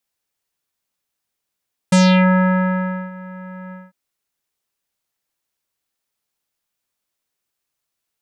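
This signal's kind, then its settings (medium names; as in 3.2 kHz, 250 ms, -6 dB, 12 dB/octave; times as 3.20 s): synth note square F#3 24 dB/octave, low-pass 1.7 kHz, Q 2.2, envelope 2.5 oct, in 0.34 s, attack 7.1 ms, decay 1.18 s, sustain -23 dB, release 0.20 s, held 1.80 s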